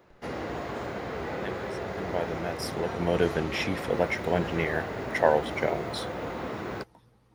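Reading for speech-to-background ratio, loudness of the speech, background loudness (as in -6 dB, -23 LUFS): 5.5 dB, -29.5 LUFS, -35.0 LUFS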